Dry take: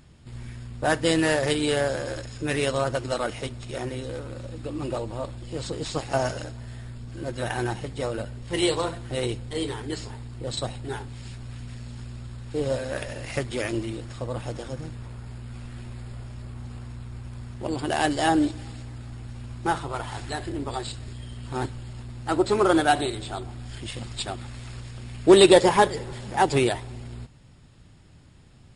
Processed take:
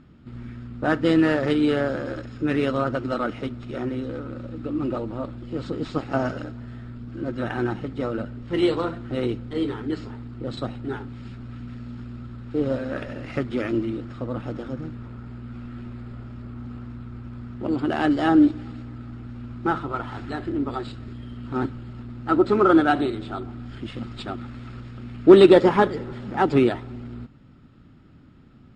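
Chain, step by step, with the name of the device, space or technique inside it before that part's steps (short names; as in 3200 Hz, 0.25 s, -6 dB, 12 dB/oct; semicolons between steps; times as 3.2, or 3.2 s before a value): inside a cardboard box (LPF 3400 Hz 12 dB/oct; small resonant body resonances 250/1300 Hz, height 12 dB, ringing for 20 ms); gain -3 dB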